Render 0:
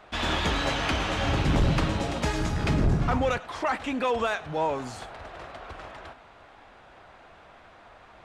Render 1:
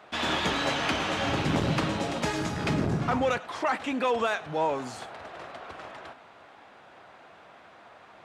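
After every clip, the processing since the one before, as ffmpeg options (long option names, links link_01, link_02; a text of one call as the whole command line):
ffmpeg -i in.wav -af "highpass=140" out.wav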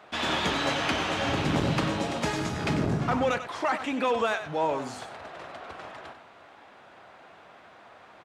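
ffmpeg -i in.wav -af "aecho=1:1:95:0.282" out.wav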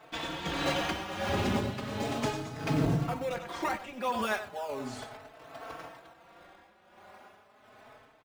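ffmpeg -i in.wav -filter_complex "[0:a]asplit=2[link_01][link_02];[link_02]acrusher=samples=21:mix=1:aa=0.000001:lfo=1:lforange=21:lforate=0.65,volume=-9dB[link_03];[link_01][link_03]amix=inputs=2:normalize=0,tremolo=f=1.4:d=0.65,asplit=2[link_04][link_05];[link_05]adelay=4,afreqshift=0.35[link_06];[link_04][link_06]amix=inputs=2:normalize=1" out.wav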